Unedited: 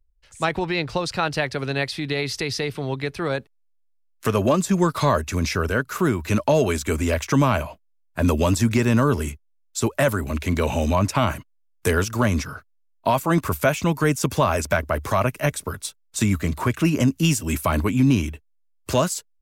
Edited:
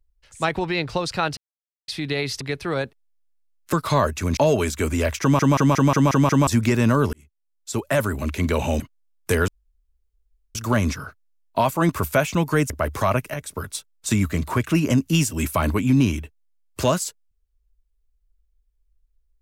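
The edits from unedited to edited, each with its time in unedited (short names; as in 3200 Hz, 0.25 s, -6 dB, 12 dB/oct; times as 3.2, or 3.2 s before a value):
1.37–1.88 mute
2.41–2.95 cut
4.27–4.84 cut
5.48–6.45 cut
7.29 stutter in place 0.18 s, 7 plays
9.21–10.16 fade in
10.88–11.36 cut
12.04 insert room tone 1.07 s
14.19–14.8 cut
15.44–15.73 fade in, from -12.5 dB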